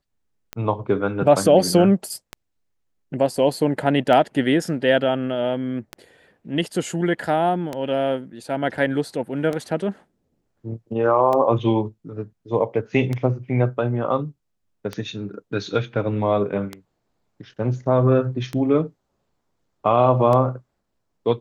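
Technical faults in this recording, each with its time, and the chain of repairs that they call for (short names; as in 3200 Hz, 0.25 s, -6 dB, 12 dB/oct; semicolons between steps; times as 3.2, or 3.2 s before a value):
tick 33 1/3 rpm -13 dBFS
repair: de-click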